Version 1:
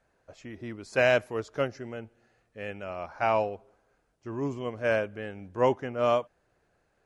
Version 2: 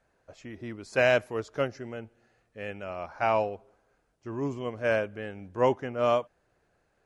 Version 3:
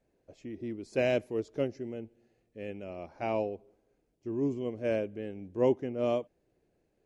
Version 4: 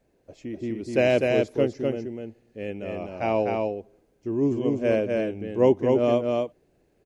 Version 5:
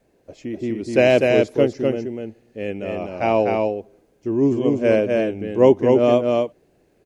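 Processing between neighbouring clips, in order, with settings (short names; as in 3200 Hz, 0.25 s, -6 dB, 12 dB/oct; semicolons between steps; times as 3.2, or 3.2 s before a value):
nothing audible
EQ curve 110 Hz 0 dB, 340 Hz +7 dB, 1400 Hz -14 dB, 2200 Hz -4 dB; gain -3.5 dB
echo 0.251 s -3 dB; gain +7 dB
low shelf 87 Hz -5.5 dB; wow and flutter 25 cents; gain +6 dB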